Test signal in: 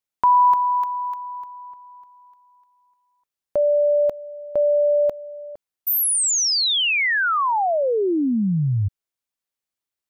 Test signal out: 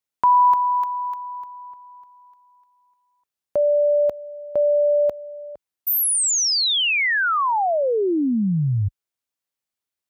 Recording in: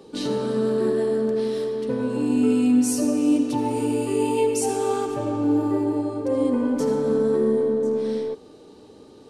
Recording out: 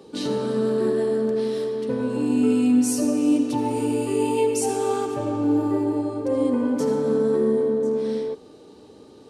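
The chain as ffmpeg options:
-af "highpass=42"

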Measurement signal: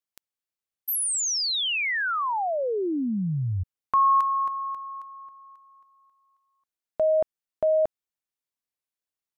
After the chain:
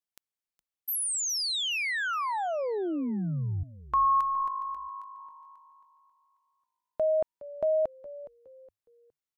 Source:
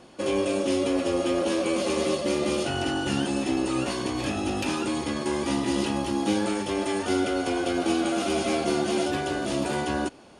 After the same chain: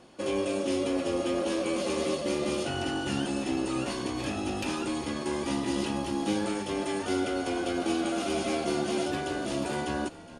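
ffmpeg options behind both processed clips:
-filter_complex "[0:a]asplit=4[a][b][c][d];[b]adelay=415,afreqshift=-52,volume=-17dB[e];[c]adelay=830,afreqshift=-104,volume=-26.9dB[f];[d]adelay=1245,afreqshift=-156,volume=-36.8dB[g];[a][e][f][g]amix=inputs=4:normalize=0,volume=-4dB"

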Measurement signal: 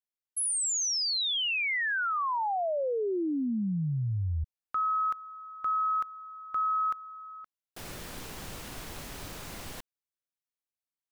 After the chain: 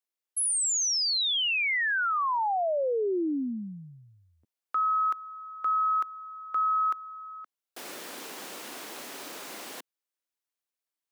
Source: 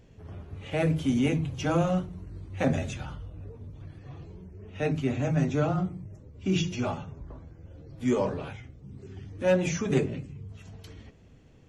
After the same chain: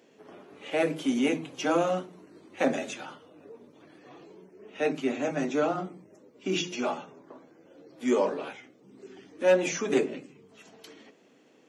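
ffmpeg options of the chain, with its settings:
-af "highpass=f=260:w=0.5412,highpass=f=260:w=1.3066,volume=2.5dB"

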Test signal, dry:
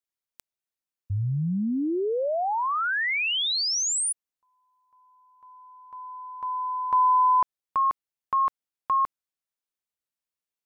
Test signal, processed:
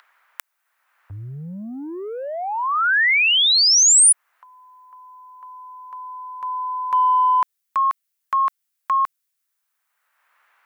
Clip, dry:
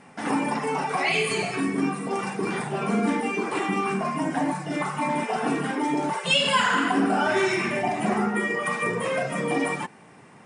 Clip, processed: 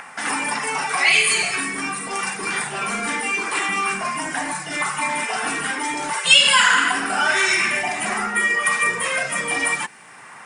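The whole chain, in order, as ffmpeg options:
-filter_complex "[0:a]equalizer=f=1.6k:t=o:w=1.8:g=8,acrossover=split=670|1600[a][b][c];[a]asoftclip=type=tanh:threshold=-23.5dB[d];[b]acompressor=mode=upward:threshold=-31dB:ratio=2.5:attack=19:release=548:knee=2.83:detection=peak[e];[d][e][c]amix=inputs=3:normalize=0,crystalizer=i=7.5:c=0,volume=-5.5dB"

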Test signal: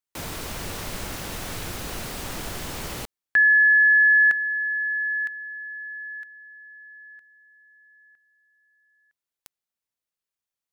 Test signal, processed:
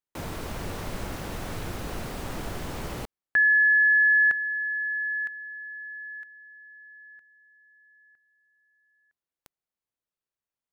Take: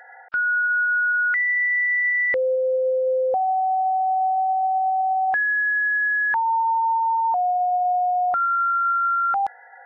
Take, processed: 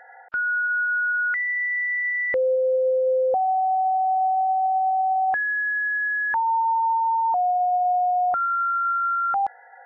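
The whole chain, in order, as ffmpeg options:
-af "highshelf=f=2k:g=-10,volume=1dB"

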